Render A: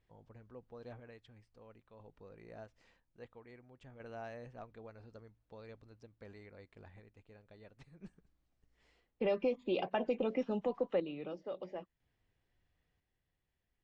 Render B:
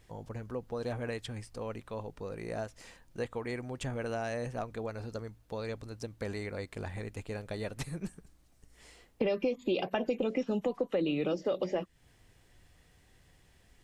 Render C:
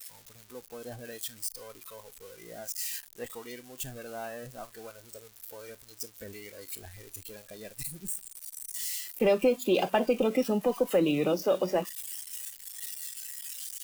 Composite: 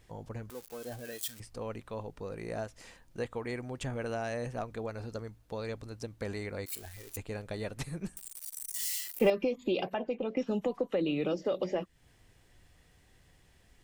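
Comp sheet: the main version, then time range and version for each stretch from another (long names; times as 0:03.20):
B
0:00.50–0:01.40: punch in from C
0:06.66–0:07.17: punch in from C
0:08.17–0:09.30: punch in from C
0:09.94–0:10.37: punch in from A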